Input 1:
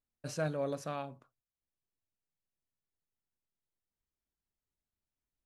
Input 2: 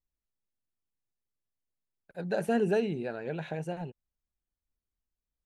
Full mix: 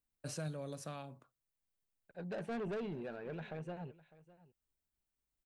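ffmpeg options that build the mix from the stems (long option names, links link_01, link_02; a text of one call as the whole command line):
ffmpeg -i stem1.wav -i stem2.wav -filter_complex "[0:a]acrossover=split=190|3000[link_01][link_02][link_03];[link_02]acompressor=threshold=-42dB:ratio=6[link_04];[link_01][link_04][link_03]amix=inputs=3:normalize=0,volume=-1.5dB[link_05];[1:a]lowpass=4100,asoftclip=type=tanh:threshold=-30dB,volume=-6.5dB,asplit=2[link_06][link_07];[link_07]volume=-19.5dB,aecho=0:1:604:1[link_08];[link_05][link_06][link_08]amix=inputs=3:normalize=0,aexciter=amount=1.6:drive=3.6:freq=8100" out.wav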